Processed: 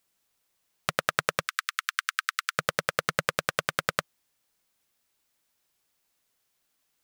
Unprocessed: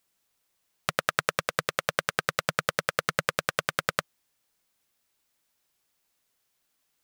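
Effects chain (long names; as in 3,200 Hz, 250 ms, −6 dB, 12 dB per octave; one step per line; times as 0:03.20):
0:01.48–0:02.59: Butterworth high-pass 1,200 Hz 48 dB per octave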